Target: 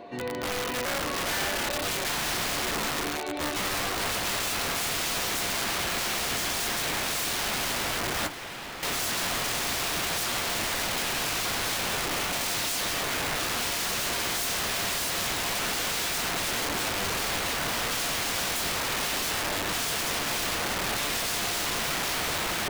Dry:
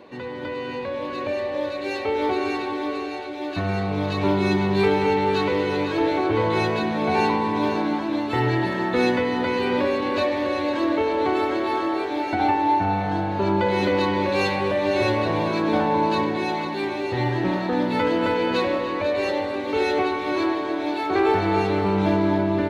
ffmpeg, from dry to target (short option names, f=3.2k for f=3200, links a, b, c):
-filter_complex "[0:a]asettb=1/sr,asplit=3[a][b][c];[a]atrim=end=5.644[d];[b]atrim=start=5.64:end=6.46,asetpts=PTS-STARTPTS,afade=t=in:d=0.004:c=qsin,afade=t=out:st=0.816:d=0.004:c=qsin,highshelf=f=1.9k:t=q:w=3:g=-12[e];[c]atrim=start=6.456[f];[d][e]acrossfade=d=0.004:c1=hsin:c2=qsin[g];[g][f]acrossfade=d=0.004:c1=qsin:c2=hsin,aeval=exprs='(mod(16.8*val(0)+1,2)-1)/16.8':c=same,aeval=exprs='val(0)+0.00562*sin(2*PI*700*n/s)':c=same,asettb=1/sr,asplit=3[h][i][j];[h]atrim=end=8.274[k];[i]atrim=start=8.27:end=8.83,asetpts=PTS-STARTPTS,afade=t=in:d=0.004:c=qsin,afade=t=out:st=0.556:d=0.004:c=qsin,acrossover=split=240|3600[l][m][n];[l]acompressor=threshold=-50dB:ratio=4[o];[m]acompressor=threshold=-38dB:ratio=4[p];[n]acompressor=threshold=-48dB:ratio=4[q];[o][p][q]amix=inputs=3:normalize=0[r];[j]atrim=start=8.826[s];[k][r]acrossfade=d=0.004:c1=hsin:c2=qsin[t];[t][s]acrossfade=d=0.004:c1=qsin:c2=hsin"